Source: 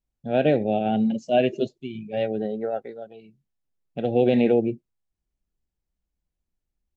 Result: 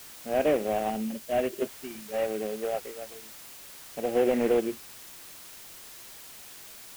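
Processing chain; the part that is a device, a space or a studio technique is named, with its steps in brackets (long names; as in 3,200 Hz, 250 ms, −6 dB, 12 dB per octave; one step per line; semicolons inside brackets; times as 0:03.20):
army field radio (band-pass filter 310–3,200 Hz; variable-slope delta modulation 16 kbit/s; white noise bed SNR 16 dB)
0:00.90–0:01.62: parametric band 990 Hz −4.5 dB 2.7 octaves
level −2 dB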